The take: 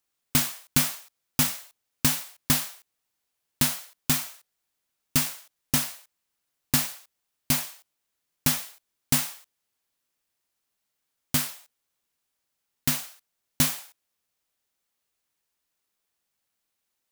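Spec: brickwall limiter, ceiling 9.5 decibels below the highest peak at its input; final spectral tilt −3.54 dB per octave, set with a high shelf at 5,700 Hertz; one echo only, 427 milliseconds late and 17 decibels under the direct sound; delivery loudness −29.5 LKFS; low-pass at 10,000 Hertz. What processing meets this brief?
low-pass filter 10,000 Hz
high-shelf EQ 5,700 Hz −7.5 dB
brickwall limiter −18.5 dBFS
single-tap delay 427 ms −17 dB
level +6 dB

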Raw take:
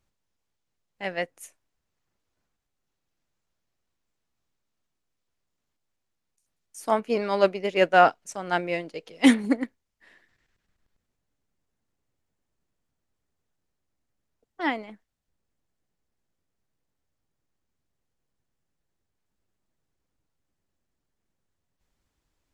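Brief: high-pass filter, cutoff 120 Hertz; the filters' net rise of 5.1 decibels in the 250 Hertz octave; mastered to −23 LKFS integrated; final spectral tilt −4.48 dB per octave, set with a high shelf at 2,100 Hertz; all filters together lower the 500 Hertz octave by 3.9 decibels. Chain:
high-pass filter 120 Hz
parametric band 250 Hz +7.5 dB
parametric band 500 Hz −7.5 dB
high-shelf EQ 2,100 Hz +4 dB
level −0.5 dB

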